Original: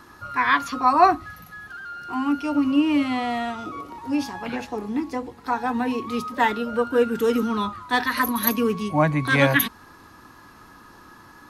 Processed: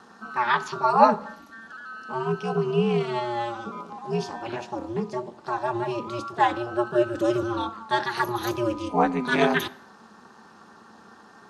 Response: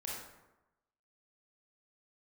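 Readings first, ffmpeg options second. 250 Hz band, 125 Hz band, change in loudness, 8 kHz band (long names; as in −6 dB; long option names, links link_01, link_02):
−5.5 dB, −2.5 dB, −3.0 dB, −8.0 dB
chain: -filter_complex "[0:a]aeval=exprs='val(0)*sin(2*PI*120*n/s)':channel_layout=same,highpass=140,equalizer=frequency=140:width_type=q:width=4:gain=-7,equalizer=frequency=220:width_type=q:width=4:gain=9,equalizer=frequency=790:width_type=q:width=4:gain=5,equalizer=frequency=2100:width_type=q:width=4:gain=-7,lowpass=frequency=8600:width=0.5412,lowpass=frequency=8600:width=1.3066,asplit=2[link_01][link_02];[1:a]atrim=start_sample=2205,afade=type=out:start_time=0.32:duration=0.01,atrim=end_sample=14553,adelay=23[link_03];[link_02][link_03]afir=irnorm=-1:irlink=0,volume=-19.5dB[link_04];[link_01][link_04]amix=inputs=2:normalize=0"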